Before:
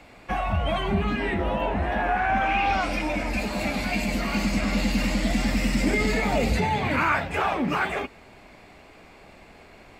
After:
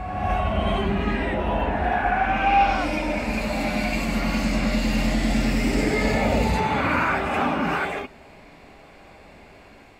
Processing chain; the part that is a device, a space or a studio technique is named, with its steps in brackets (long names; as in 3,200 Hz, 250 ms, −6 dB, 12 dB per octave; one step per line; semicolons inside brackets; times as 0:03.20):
reverse reverb (reversed playback; convolution reverb RT60 1.7 s, pre-delay 49 ms, DRR −1 dB; reversed playback)
level −2 dB